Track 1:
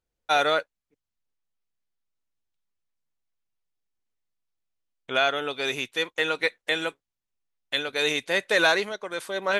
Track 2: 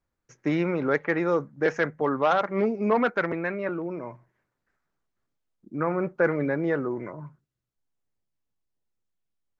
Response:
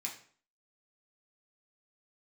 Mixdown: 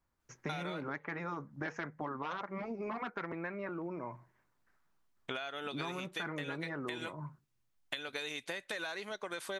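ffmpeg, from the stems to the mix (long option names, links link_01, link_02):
-filter_complex "[0:a]acompressor=threshold=-28dB:ratio=6,adelay=200,volume=1.5dB[link_01];[1:a]equalizer=frequency=1000:width=2.3:gain=4.5,volume=-0.5dB[link_02];[link_01][link_02]amix=inputs=2:normalize=0,afftfilt=real='re*lt(hypot(re,im),0.447)':imag='im*lt(hypot(re,im),0.447)':win_size=1024:overlap=0.75,equalizer=frequency=480:width=2.3:gain=-3.5,acompressor=threshold=-37dB:ratio=6"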